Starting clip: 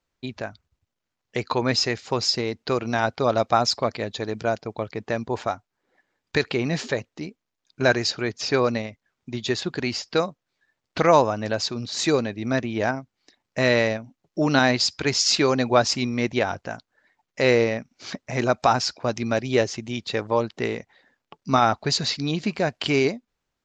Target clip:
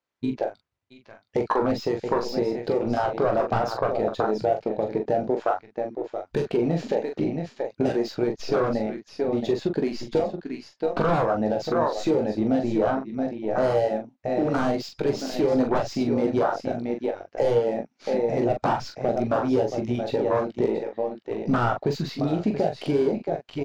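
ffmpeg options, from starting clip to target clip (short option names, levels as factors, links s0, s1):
-filter_complex "[0:a]highpass=f=340:p=1,asplit=2[s0][s1];[s1]aecho=0:1:675:0.251[s2];[s0][s2]amix=inputs=2:normalize=0,aeval=exprs='0.708*sin(PI/2*5.62*val(0)/0.708)':c=same,aeval=exprs='0.75*(cos(1*acos(clip(val(0)/0.75,-1,1)))-cos(1*PI/2))+0.0376*(cos(8*acos(clip(val(0)/0.75,-1,1)))-cos(8*PI/2))':c=same,lowpass=f=3200:p=1,acompressor=threshold=0.2:ratio=6,afwtdn=0.2,asplit=2[s3][s4];[s4]aecho=0:1:19|42:0.355|0.501[s5];[s3][s5]amix=inputs=2:normalize=0,volume=0.501"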